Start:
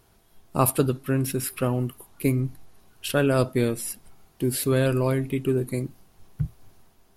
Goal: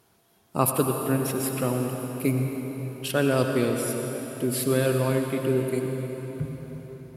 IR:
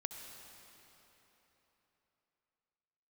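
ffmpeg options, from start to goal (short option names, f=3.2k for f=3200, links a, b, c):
-filter_complex "[0:a]highpass=120[a];[1:a]atrim=start_sample=2205,asetrate=33957,aresample=44100[b];[a][b]afir=irnorm=-1:irlink=0"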